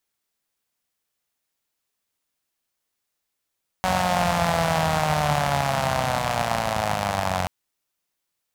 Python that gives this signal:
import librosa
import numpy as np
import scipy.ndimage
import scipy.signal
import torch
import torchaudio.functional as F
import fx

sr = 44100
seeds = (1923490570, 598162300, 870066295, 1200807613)

y = fx.engine_four_rev(sr, seeds[0], length_s=3.63, rpm=5600, resonances_hz=(87.0, 150.0, 690.0), end_rpm=2700)